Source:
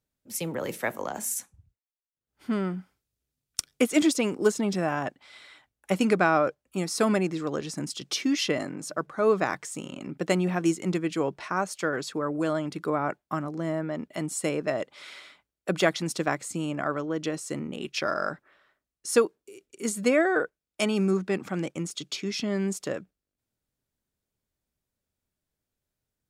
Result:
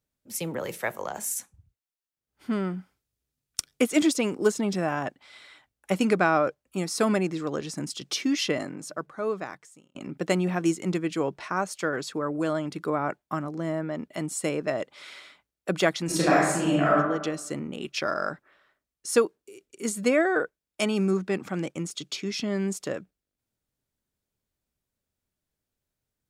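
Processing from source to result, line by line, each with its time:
0.61–1.35 bell 260 Hz -9.5 dB 0.52 oct
8.53–9.95 fade out
16.05–16.92 reverb throw, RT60 1 s, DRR -7 dB

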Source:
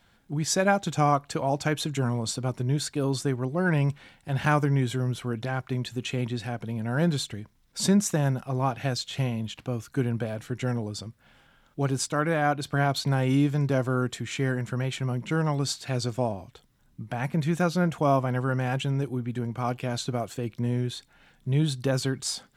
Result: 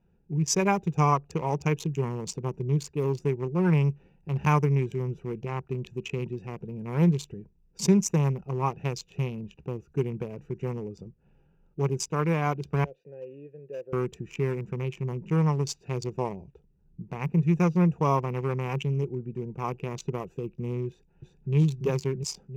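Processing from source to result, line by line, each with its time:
12.84–13.93 vowel filter e
20.88–21.55 echo throw 0.34 s, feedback 65%, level -3 dB
whole clip: Wiener smoothing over 41 samples; ripple EQ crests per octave 0.77, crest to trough 12 dB; gain -1.5 dB

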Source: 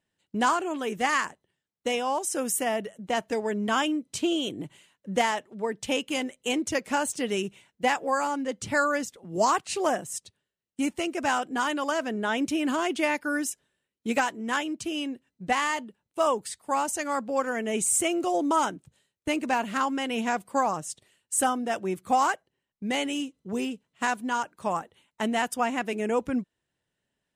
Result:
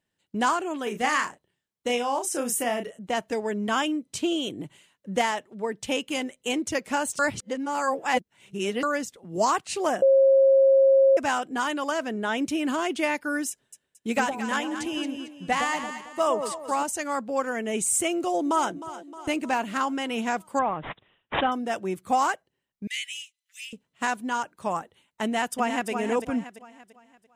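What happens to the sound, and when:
0.83–2.99 doubler 33 ms -7 dB
7.19–8.83 reverse
10.02–11.17 bleep 540 Hz -14 dBFS
13.5–16.83 echo with dull and thin repeats by turns 0.112 s, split 810 Hz, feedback 59%, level -4.5 dB
18.14–18.71 echo throw 0.31 s, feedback 60%, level -14.5 dB
20.59–21.52 careless resampling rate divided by 6×, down none, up filtered
22.87–23.73 steep high-pass 1900 Hz 48 dB/oct
25.24–25.9 echo throw 0.34 s, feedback 40%, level -6.5 dB

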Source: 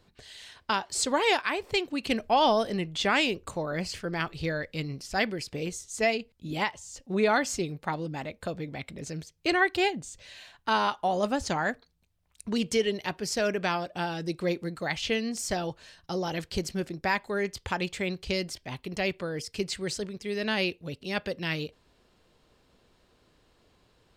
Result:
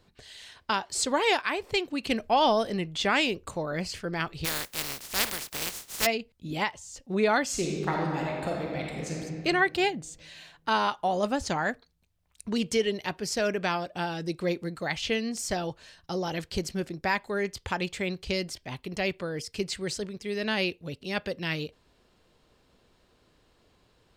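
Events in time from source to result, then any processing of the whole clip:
4.44–6.05 spectral contrast lowered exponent 0.17
7.45–9.19 reverb throw, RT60 2.2 s, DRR -1.5 dB

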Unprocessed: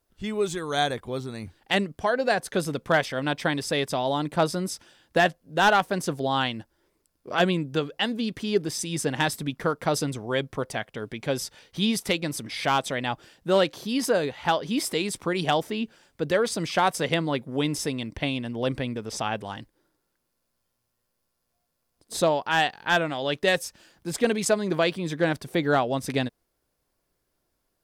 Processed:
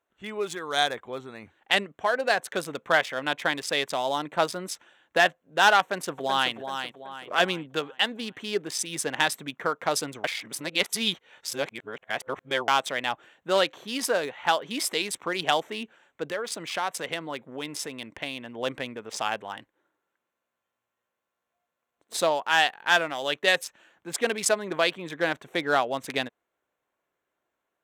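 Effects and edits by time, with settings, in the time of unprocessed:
5.8–6.53 echo throw 0.38 s, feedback 45%, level -7.5 dB
10.24–12.68 reverse
16.24–18.58 compressor 2:1, threshold -29 dBFS
whole clip: Wiener smoothing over 9 samples; HPF 1000 Hz 6 dB/oct; gain +4 dB

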